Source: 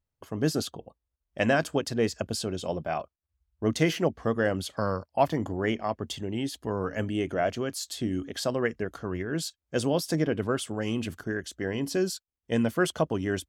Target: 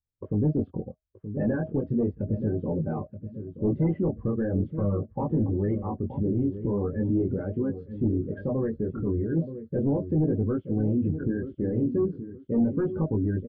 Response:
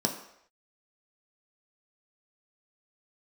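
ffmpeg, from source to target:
-filter_complex "[0:a]asplit=2[a][b];[b]acompressor=threshold=-36dB:ratio=6,volume=1dB[c];[a][c]amix=inputs=2:normalize=0,asuperstop=centerf=680:order=20:qfactor=6.8,flanger=delay=18.5:depth=6.1:speed=0.38,adynamicequalizer=threshold=0.00631:dfrequency=570:dqfactor=1.7:tfrequency=570:tqfactor=1.7:attack=5:release=100:ratio=0.375:range=3:mode=cutabove:tftype=bell,aresample=16000,asoftclip=type=hard:threshold=-24.5dB,aresample=44100,lowpass=f=2.4k:w=0.5412,lowpass=f=2.4k:w=1.3066,alimiter=level_in=5dB:limit=-24dB:level=0:latency=1:release=108,volume=-5dB,tiltshelf=f=750:g=9,aecho=1:1:926|1852|2778|3704:0.316|0.114|0.041|0.0148,afftdn=nr=21:nf=-38,volume=3.5dB"

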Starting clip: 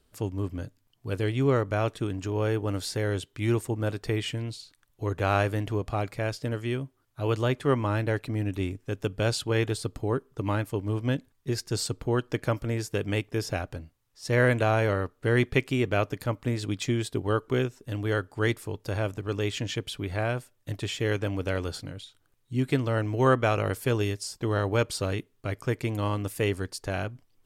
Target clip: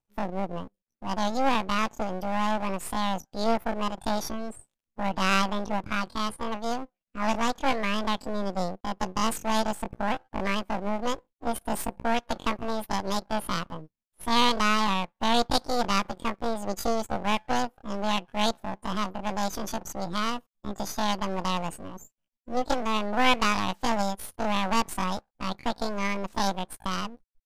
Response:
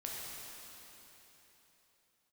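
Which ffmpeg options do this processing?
-af "asetrate=85689,aresample=44100,atempo=0.514651,afftdn=nr=20:nf=-44,aeval=exprs='max(val(0),0)':c=same,volume=4dB" -ar 32000 -c:a libmp3lame -b:a 128k

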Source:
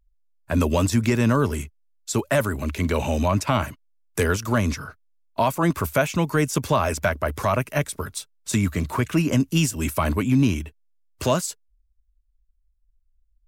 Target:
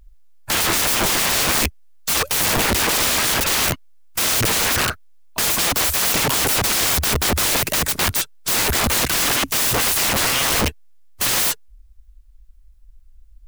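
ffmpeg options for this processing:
-af "apsyclip=19.5dB,aeval=exprs='(mod(4.22*val(0)+1,2)-1)/4.22':c=same,volume=-1dB"

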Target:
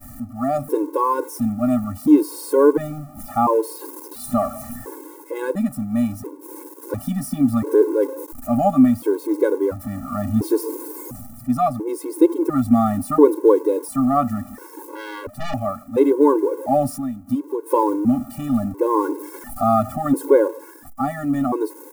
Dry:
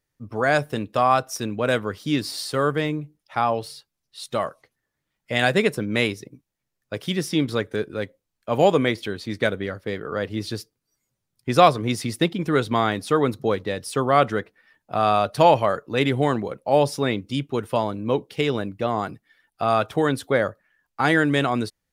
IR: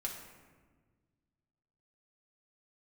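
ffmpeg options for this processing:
-filter_complex "[0:a]aeval=exprs='val(0)+0.5*0.0376*sgn(val(0))':c=same,asplit=3[a][b][c];[a]afade=t=out:st=16.96:d=0.02[d];[b]acompressor=threshold=-28dB:ratio=5,afade=t=in:st=16.96:d=0.02,afade=t=out:st=17.7:d=0.02[e];[c]afade=t=in:st=17.7:d=0.02[f];[d][e][f]amix=inputs=3:normalize=0,crystalizer=i=4:c=0,dynaudnorm=f=120:g=9:m=8.5dB,equalizer=f=660:t=o:w=0.72:g=-12.5,agate=range=-33dB:threshold=-21dB:ratio=3:detection=peak,firequalizer=gain_entry='entry(110,0);entry(160,-9);entry(240,11);entry(980,7);entry(1600,-14);entry(3200,-28);entry(9700,-16)':delay=0.05:min_phase=1,asettb=1/sr,asplit=3[g][h][i];[g]atrim=end=14.954[j];[h]atrim=start=14.95:end=15.54,asetpts=PTS-STARTPTS,afade=t=in:d=0.004:c=qsin,afade=t=out:st=0.586:d=0.004:c=qsin,aeval=exprs='(tanh(10*val(0)+0.75)-tanh(0.75))/10':c=same[k];[i]atrim=start=15.536[l];[j][k]acrossfade=d=0.004:c1=hsin:c2=qsin[m];[m][l]acrossfade=d=0.004:c1=qsin:c2=hsin,afftfilt=real='re*gt(sin(2*PI*0.72*pts/sr)*(1-2*mod(floor(b*sr/1024/280),2)),0)':imag='im*gt(sin(2*PI*0.72*pts/sr)*(1-2*mod(floor(b*sr/1024/280),2)),0)':win_size=1024:overlap=0.75"

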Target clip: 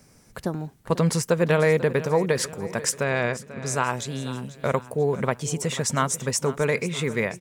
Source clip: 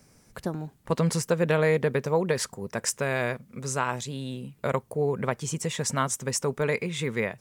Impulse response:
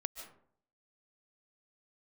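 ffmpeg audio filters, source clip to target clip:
-filter_complex "[0:a]asettb=1/sr,asplit=3[a][b][c];[a]atrim=end=3.034[d];[b]atrim=start=3.03:end=3.66,asetpts=PTS-STARTPTS,afade=t=in:d=0.004:c=qsin,afade=t=out:st=0.626:d=0.004:c=qsin,lowpass=f=6.3k:w=0.5412,lowpass=f=6.3k:w=1.3066[e];[c]atrim=start=3.656[f];[d][e]acrossfade=d=0.004:c1=hsin:c2=qsin[g];[g][f]acrossfade=d=0.004:c1=qsin:c2=hsin,aecho=1:1:490|980|1470|1960:0.158|0.0777|0.0381|0.0186,volume=3dB"

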